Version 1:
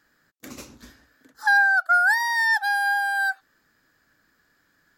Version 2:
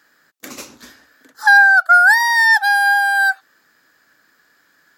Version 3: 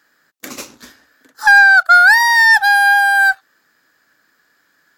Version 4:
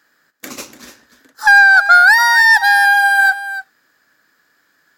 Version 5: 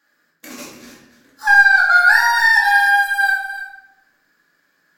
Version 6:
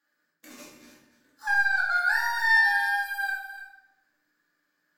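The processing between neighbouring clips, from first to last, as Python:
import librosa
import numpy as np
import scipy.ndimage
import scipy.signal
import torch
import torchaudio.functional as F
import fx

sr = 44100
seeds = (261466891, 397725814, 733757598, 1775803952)

y1 = fx.highpass(x, sr, hz=440.0, slope=6)
y1 = y1 * librosa.db_to_amplitude(9.0)
y2 = fx.leveller(y1, sr, passes=1)
y3 = y2 + 10.0 ** (-12.5 / 20.0) * np.pad(y2, (int(292 * sr / 1000.0), 0))[:len(y2)]
y4 = fx.room_shoebox(y3, sr, seeds[0], volume_m3=300.0, walls='mixed', distance_m=2.3)
y4 = y4 * librosa.db_to_amplitude(-10.5)
y5 = fx.comb_fb(y4, sr, f0_hz=300.0, decay_s=0.61, harmonics='all', damping=0.0, mix_pct=80)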